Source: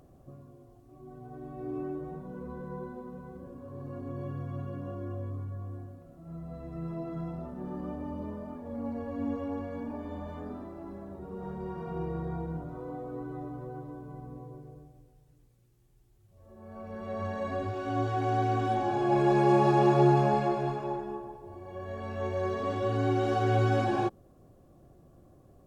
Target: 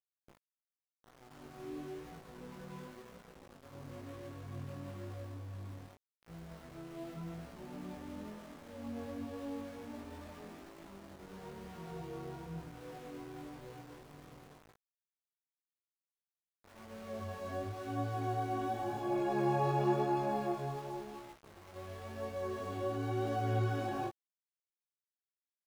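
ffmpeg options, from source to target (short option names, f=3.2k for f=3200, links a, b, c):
-af "aeval=exprs='val(0)*gte(abs(val(0)),0.00891)':c=same,flanger=delay=17.5:depth=4:speed=0.94,volume=-5.5dB"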